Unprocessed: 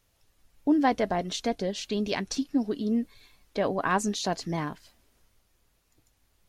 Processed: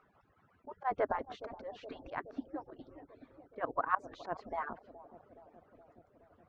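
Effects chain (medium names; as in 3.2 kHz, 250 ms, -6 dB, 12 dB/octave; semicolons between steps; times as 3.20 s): harmonic-percussive separation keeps percussive; upward compressor, threshold -52 dBFS; slow attack 104 ms; resonant low-pass 1.3 kHz, resonance Q 2.4; bucket-brigade echo 420 ms, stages 2048, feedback 73%, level -13.5 dB; trim -4.5 dB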